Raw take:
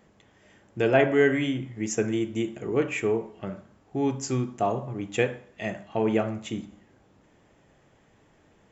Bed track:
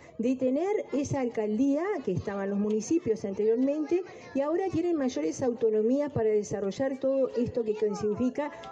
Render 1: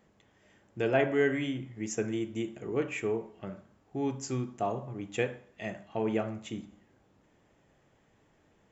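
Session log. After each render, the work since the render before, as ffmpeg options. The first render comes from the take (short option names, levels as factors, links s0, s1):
-af "volume=0.501"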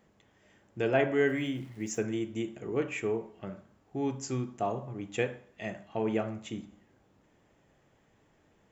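-filter_complex "[0:a]asettb=1/sr,asplit=3[s0][s1][s2];[s0]atrim=end=1.274[s3];[s1]atrim=start=1.27:end=2.03,asetpts=PTS-STARTPTS,afade=t=in:d=0.004:c=qsin,afade=t=out:st=0.756:d=0.004:c=qsin,aeval=exprs='val(0)*gte(abs(val(0)),0.00224)':c=same[s4];[s2]atrim=start=2.026[s5];[s3][s4]acrossfade=d=0.004:c1=hsin:c2=qsin[s6];[s6][s5]acrossfade=d=0.004:c1=qsin:c2=hsin"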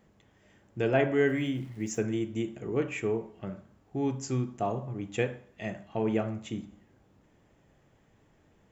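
-af "lowshelf=f=210:g=6"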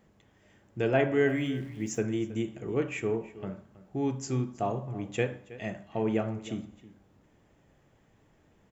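-filter_complex "[0:a]asplit=2[s0][s1];[s1]adelay=320.7,volume=0.141,highshelf=f=4000:g=-7.22[s2];[s0][s2]amix=inputs=2:normalize=0"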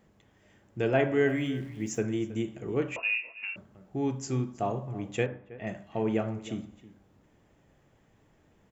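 -filter_complex "[0:a]asettb=1/sr,asplit=3[s0][s1][s2];[s0]atrim=end=2.964[s3];[s1]atrim=start=2.96:end=3.56,asetpts=PTS-STARTPTS,afade=t=in:d=0.004:c=qsin,afade=t=out:st=0.596:d=0.004:c=qsin,lowpass=f=2500:t=q:w=0.5098,lowpass=f=2500:t=q:w=0.6013,lowpass=f=2500:t=q:w=0.9,lowpass=f=2500:t=q:w=2.563,afreqshift=-2900[s4];[s2]atrim=start=3.556[s5];[s3][s4]acrossfade=d=0.004:c1=hsin:c2=qsin[s6];[s6][s5]acrossfade=d=0.004:c1=qsin:c2=hsin,asettb=1/sr,asplit=3[s7][s8][s9];[s7]atrim=end=5.264[s10];[s8]atrim=start=5.26:end=5.67,asetpts=PTS-STARTPTS,afade=t=in:d=0.004:c=qsin,afade=t=out:st=0.406:d=0.004:c=qsin,lowpass=2000[s11];[s9]atrim=start=5.666[s12];[s10][s11]acrossfade=d=0.004:c1=hsin:c2=qsin[s13];[s13][s12]acrossfade=d=0.004:c1=qsin:c2=hsin"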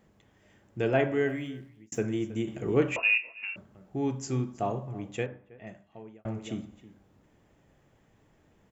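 -filter_complex "[0:a]asettb=1/sr,asplit=3[s0][s1][s2];[s0]atrim=end=2.474[s3];[s1]atrim=start=2.47:end=3.18,asetpts=PTS-STARTPTS,afade=t=in:d=0.004:c=qsin,afade=t=out:st=0.706:d=0.004:c=qsin,acontrast=22[s4];[s2]atrim=start=3.176[s5];[s3][s4]acrossfade=d=0.004:c1=hsin:c2=qsin[s6];[s6][s5]acrossfade=d=0.004:c1=qsin:c2=hsin,asplit=3[s7][s8][s9];[s7]atrim=end=1.92,asetpts=PTS-STARTPTS,afade=t=out:st=0.98:d=0.94[s10];[s8]atrim=start=1.92:end=6.25,asetpts=PTS-STARTPTS,afade=t=in:d=0.004:c=hsin,afade=t=out:st=2.78:d=1.55[s11];[s9]atrim=start=6.25,asetpts=PTS-STARTPTS,afade=t=in:d=0.004:c=hsin[s12];[s10][s11][s12]concat=n=3:v=0:a=1"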